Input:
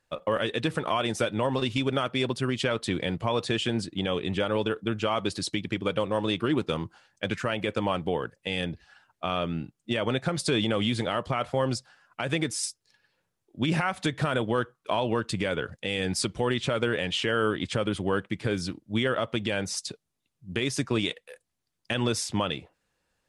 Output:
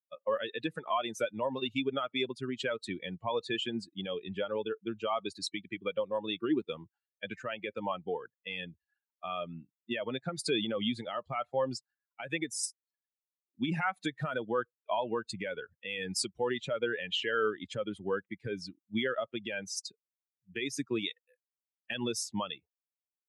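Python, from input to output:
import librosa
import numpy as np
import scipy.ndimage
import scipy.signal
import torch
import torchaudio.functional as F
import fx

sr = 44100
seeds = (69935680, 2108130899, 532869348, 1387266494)

y = fx.bin_expand(x, sr, power=2.0)
y = scipy.signal.sosfilt(scipy.signal.butter(2, 190.0, 'highpass', fs=sr, output='sos'), y)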